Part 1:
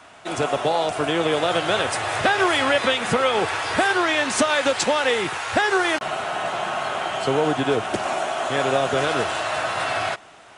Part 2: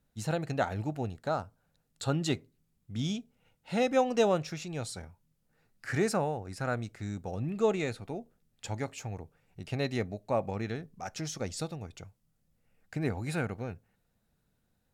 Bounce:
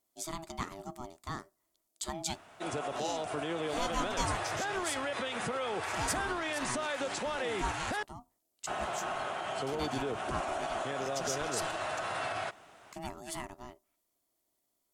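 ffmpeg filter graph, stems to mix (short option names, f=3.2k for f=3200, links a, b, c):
-filter_complex "[0:a]equalizer=f=3.6k:w=0.55:g=-3,alimiter=limit=-18dB:level=0:latency=1:release=58,adelay=2350,volume=-8.5dB,asplit=3[a][b][c];[a]atrim=end=8.03,asetpts=PTS-STARTPTS,afade=t=out:st=8.026:d=0.004:c=hsin[d];[b]atrim=start=8.03:end=8.67,asetpts=PTS-STARTPTS,volume=0[e];[c]atrim=start=8.67,asetpts=PTS-STARTPTS,afade=t=in:d=0.004:c=hsin[f];[d][e][f]concat=n=3:v=0:a=1[g];[1:a]highpass=f=120:p=1,bass=f=250:g=-1,treble=f=4k:g=14,aeval=exprs='val(0)*sin(2*PI*490*n/s)':c=same,volume=-5.5dB[h];[g][h]amix=inputs=2:normalize=0"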